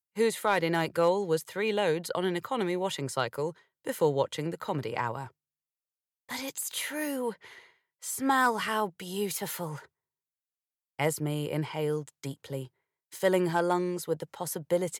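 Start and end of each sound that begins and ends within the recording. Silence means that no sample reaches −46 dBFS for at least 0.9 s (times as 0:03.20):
0:06.29–0:09.85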